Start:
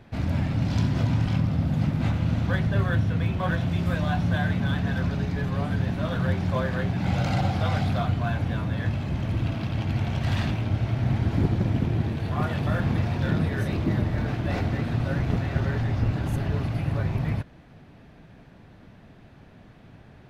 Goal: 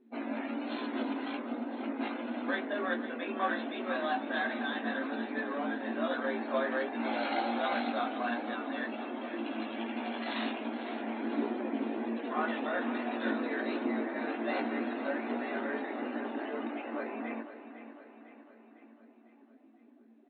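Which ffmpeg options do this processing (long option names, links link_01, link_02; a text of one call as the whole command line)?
ffmpeg -i in.wav -filter_complex "[0:a]flanger=delay=17:depth=2:speed=1.3,afftdn=noise_reduction=23:noise_floor=-47,bandreject=frequency=60:width_type=h:width=6,bandreject=frequency=120:width_type=h:width=6,bandreject=frequency=180:width_type=h:width=6,bandreject=frequency=240:width_type=h:width=6,bandreject=frequency=300:width_type=h:width=6,bandreject=frequency=360:width_type=h:width=6,bandreject=frequency=420:width_type=h:width=6,bandreject=frequency=480:width_type=h:width=6,asoftclip=type=tanh:threshold=-18.5dB,asetrate=45392,aresample=44100,atempo=0.971532,afftfilt=real='re*between(b*sr/4096,220,4300)':imag='im*between(b*sr/4096,220,4300)':win_size=4096:overlap=0.75,asplit=2[link_01][link_02];[link_02]aecho=0:1:503|1006|1509|2012|2515|3018:0.251|0.138|0.076|0.0418|0.023|0.0126[link_03];[link_01][link_03]amix=inputs=2:normalize=0,volume=2dB" out.wav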